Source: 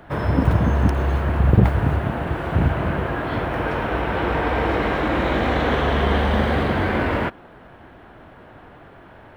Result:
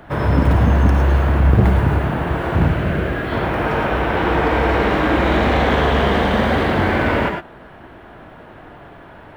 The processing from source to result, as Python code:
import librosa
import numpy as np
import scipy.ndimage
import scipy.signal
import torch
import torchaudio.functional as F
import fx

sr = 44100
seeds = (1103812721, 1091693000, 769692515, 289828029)

p1 = fx.peak_eq(x, sr, hz=930.0, db=-10.0, octaves=0.63, at=(2.69, 3.32))
p2 = 10.0 ** (-15.0 / 20.0) * (np.abs((p1 / 10.0 ** (-15.0 / 20.0) + 3.0) % 4.0 - 2.0) - 1.0)
p3 = p1 + F.gain(torch.from_numpy(p2), -7.0).numpy()
y = fx.rev_gated(p3, sr, seeds[0], gate_ms=130, shape='rising', drr_db=3.5)